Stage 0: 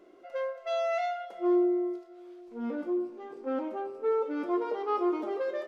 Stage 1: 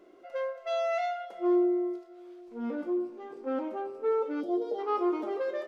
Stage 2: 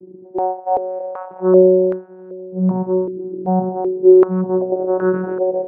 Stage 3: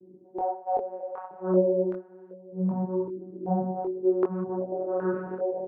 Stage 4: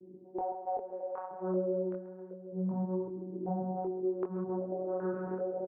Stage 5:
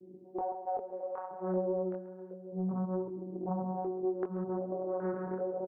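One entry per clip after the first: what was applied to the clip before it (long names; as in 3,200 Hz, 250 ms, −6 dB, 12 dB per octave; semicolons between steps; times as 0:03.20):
gain on a spectral selection 0:04.41–0:04.79, 840–2,900 Hz −17 dB
low-shelf EQ 300 Hz +10 dB; channel vocoder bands 8, saw 185 Hz; low-pass on a step sequencer 2.6 Hz 330–1,500 Hz; level +8 dB
multi-voice chorus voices 4, 1.1 Hz, delay 23 ms, depth 3 ms; level −7 dB
downward compressor 2.5 to 1, threshold −34 dBFS, peak gain reduction 11.5 dB; high-frequency loss of the air 330 metres; repeating echo 135 ms, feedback 51%, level −14 dB
highs frequency-modulated by the lows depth 0.34 ms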